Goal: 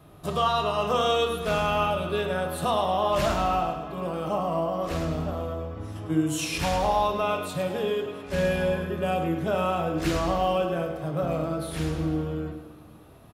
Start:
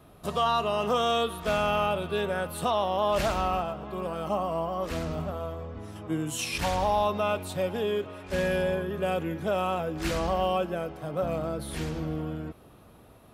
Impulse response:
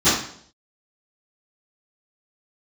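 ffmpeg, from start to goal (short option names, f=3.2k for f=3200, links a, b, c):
-filter_complex "[0:a]aecho=1:1:105|210|315|420|525:0.316|0.158|0.0791|0.0395|0.0198,asplit=2[a][b];[1:a]atrim=start_sample=2205[c];[b][c]afir=irnorm=-1:irlink=0,volume=-26dB[d];[a][d]amix=inputs=2:normalize=0"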